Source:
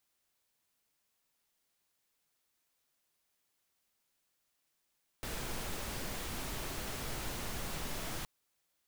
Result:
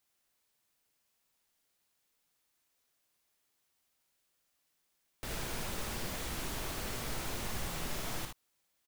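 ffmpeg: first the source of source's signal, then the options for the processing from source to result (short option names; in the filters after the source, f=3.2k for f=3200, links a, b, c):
-f lavfi -i "anoisesrc=c=pink:a=0.0543:d=3.02:r=44100:seed=1"
-af "aecho=1:1:58|76:0.473|0.422"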